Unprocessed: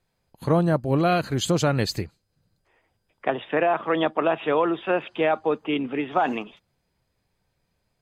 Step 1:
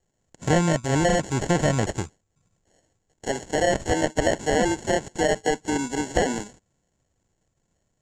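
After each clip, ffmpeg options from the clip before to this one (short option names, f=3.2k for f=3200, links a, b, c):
-filter_complex "[0:a]acrusher=samples=36:mix=1:aa=0.000001,lowpass=f=7.2k:t=q:w=11,acrossover=split=2800[a][b];[b]acompressor=threshold=-32dB:ratio=4:attack=1:release=60[c];[a][c]amix=inputs=2:normalize=0"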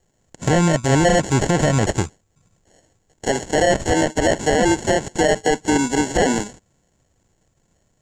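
-filter_complex "[0:a]asplit=2[a][b];[b]asoftclip=type=tanh:threshold=-21dB,volume=-12dB[c];[a][c]amix=inputs=2:normalize=0,alimiter=level_in=13dB:limit=-1dB:release=50:level=0:latency=1,volume=-6.5dB"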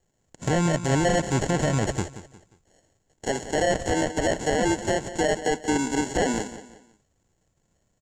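-af "aecho=1:1:178|356|534:0.211|0.074|0.0259,volume=-6.5dB"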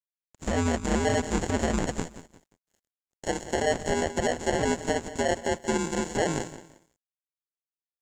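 -af "aeval=exprs='sgn(val(0))*max(abs(val(0))-0.00133,0)':c=same,aeval=exprs='val(0)*sin(2*PI*81*n/s)':c=same"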